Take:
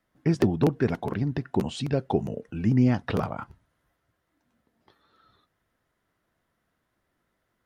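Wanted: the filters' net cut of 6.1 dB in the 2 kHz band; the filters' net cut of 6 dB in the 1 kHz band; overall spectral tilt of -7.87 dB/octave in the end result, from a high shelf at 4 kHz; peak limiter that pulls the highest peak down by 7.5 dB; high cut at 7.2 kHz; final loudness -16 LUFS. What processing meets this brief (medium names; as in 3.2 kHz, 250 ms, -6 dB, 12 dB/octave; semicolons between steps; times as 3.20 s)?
low-pass 7.2 kHz; peaking EQ 1 kHz -7.5 dB; peaking EQ 2 kHz -6 dB; treble shelf 4 kHz +3.5 dB; trim +14 dB; peak limiter -3.5 dBFS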